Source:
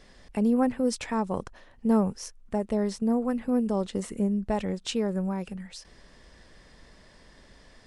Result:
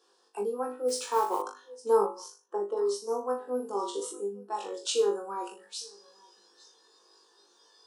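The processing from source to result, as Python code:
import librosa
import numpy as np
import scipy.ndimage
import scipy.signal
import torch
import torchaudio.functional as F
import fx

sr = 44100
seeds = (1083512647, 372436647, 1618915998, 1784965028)

y = fx.room_flutter(x, sr, wall_m=3.4, rt60_s=0.38)
y = fx.rider(y, sr, range_db=4, speed_s=0.5)
y = scipy.signal.sosfilt(scipy.signal.butter(8, 290.0, 'highpass', fs=sr, output='sos'), y)
y = fx.fixed_phaser(y, sr, hz=410.0, stages=8)
y = y + 10.0 ** (-18.0 / 20.0) * np.pad(y, (int(857 * sr / 1000.0), 0))[:len(y)]
y = fx.noise_reduce_blind(y, sr, reduce_db=11)
y = fx.mod_noise(y, sr, seeds[0], snr_db=22, at=(0.88, 1.42))
y = fx.lowpass(y, sr, hz=fx.line((2.05, 2600.0), (2.76, 1400.0)), slope=6, at=(2.05, 2.76), fade=0.02)
y = fx.doubler(y, sr, ms=48.0, db=-7.0, at=(3.42, 4.12))
y = F.gain(torch.from_numpy(y), 1.0).numpy()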